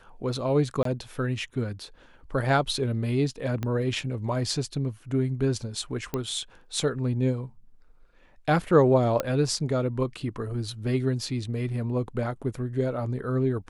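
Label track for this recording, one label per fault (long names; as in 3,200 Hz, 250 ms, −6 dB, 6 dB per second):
0.830000	0.850000	drop-out 23 ms
3.630000	3.630000	click −17 dBFS
6.140000	6.140000	click −15 dBFS
9.200000	9.200000	click −12 dBFS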